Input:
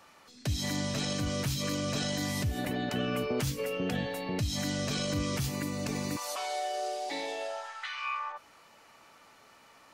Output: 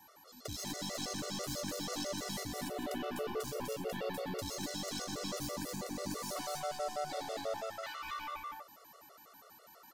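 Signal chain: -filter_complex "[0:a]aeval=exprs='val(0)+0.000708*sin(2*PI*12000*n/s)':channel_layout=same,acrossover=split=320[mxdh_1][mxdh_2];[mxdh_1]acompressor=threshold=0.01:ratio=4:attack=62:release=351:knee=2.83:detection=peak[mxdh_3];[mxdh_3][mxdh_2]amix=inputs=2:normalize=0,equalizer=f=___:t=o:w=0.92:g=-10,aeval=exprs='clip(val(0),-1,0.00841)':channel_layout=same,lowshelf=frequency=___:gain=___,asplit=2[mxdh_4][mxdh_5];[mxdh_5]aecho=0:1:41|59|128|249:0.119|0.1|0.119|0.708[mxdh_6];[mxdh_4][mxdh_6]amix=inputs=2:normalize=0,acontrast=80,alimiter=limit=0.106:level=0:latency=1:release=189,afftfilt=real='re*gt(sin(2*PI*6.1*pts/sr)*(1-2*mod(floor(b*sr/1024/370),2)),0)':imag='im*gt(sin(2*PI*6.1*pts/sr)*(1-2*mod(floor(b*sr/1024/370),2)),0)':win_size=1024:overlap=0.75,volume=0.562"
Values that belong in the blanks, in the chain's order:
2400, 120, -10.5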